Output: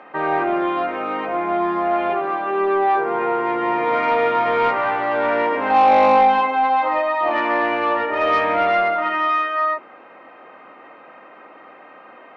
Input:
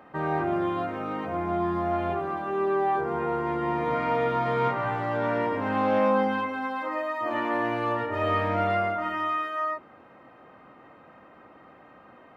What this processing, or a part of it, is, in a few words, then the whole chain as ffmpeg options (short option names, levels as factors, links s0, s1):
intercom: -filter_complex "[0:a]asettb=1/sr,asplit=3[s0][s1][s2];[s0]atrim=end=5.704[s3];[s1]atrim=start=5.7:end=7.32,asetpts=PTS-STARTPTS,afade=t=in:d=0.004:c=qsin,afade=t=out:st=1.616:d=0.004:c=qsin,equalizer=f=800:t=o:w=0.33:g=11,equalizer=f=1600:t=o:w=0.33:g=-4,equalizer=f=4000:t=o:w=0.33:g=5[s4];[s2]atrim=start=7.316[s5];[s3][s4]acrossfade=d=0.004:c1=hsin:c2=qsin[s6];[s6][s5]acrossfade=d=0.004:c1=qsin:c2=hsin,highpass=360,lowpass=3900,equalizer=f=2400:t=o:w=0.53:g=4.5,asoftclip=type=tanh:threshold=0.141,volume=2.82"